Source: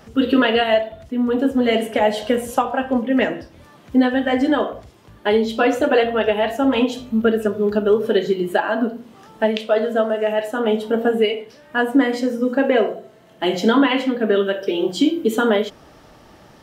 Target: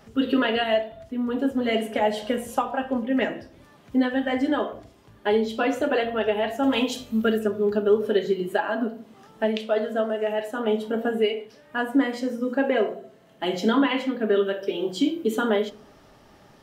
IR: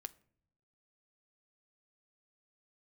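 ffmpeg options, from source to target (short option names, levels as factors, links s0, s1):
-filter_complex "[0:a]asettb=1/sr,asplit=3[s0][s1][s2];[s0]atrim=end=6.634[s3];[s1]atrim=start=6.63:end=7.39,asetpts=PTS-STARTPTS,afade=t=in:d=0.004:c=qsin,afade=t=out:st=0.756:d=0.004:c=qsin,highshelf=f=2800:g=10.5[s4];[s2]atrim=start=7.386[s5];[s3][s4]acrossfade=d=0.004:c1=hsin:c2=qsin[s6];[s6][s5]acrossfade=d=0.004:c1=qsin:c2=hsin[s7];[1:a]atrim=start_sample=2205[s8];[s7][s8]afir=irnorm=-1:irlink=0,volume=0.841"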